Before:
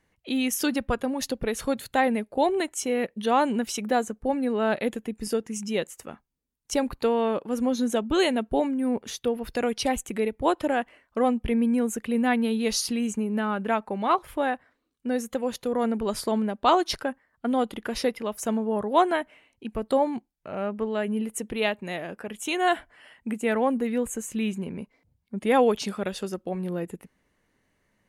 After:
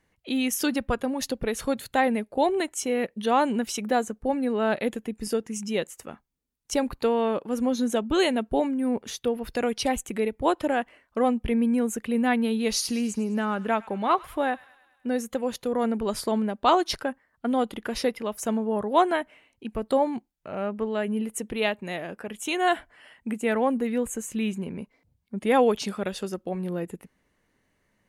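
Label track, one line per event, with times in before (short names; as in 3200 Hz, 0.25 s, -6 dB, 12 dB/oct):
12.520000	15.100000	thin delay 0.104 s, feedback 60%, high-pass 1500 Hz, level -18 dB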